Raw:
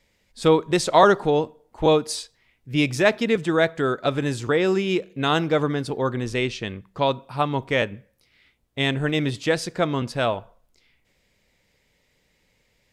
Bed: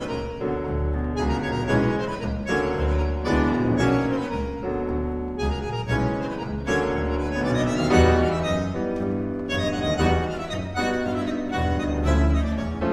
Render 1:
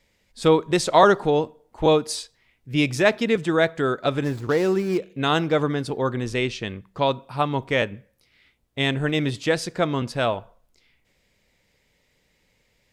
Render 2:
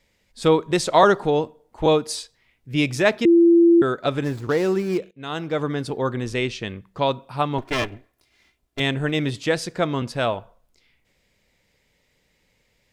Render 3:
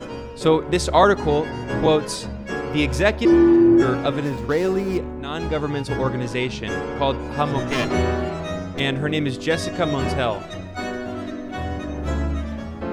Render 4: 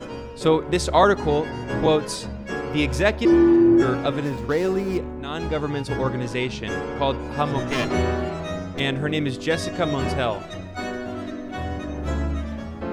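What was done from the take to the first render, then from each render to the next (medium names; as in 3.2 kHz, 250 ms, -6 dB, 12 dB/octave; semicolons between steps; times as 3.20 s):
4.24–4.98 s: median filter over 15 samples
3.25–3.82 s: bleep 339 Hz -10 dBFS; 5.11–5.82 s: fade in, from -20 dB; 7.58–8.80 s: comb filter that takes the minimum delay 2.9 ms
add bed -4 dB
trim -1.5 dB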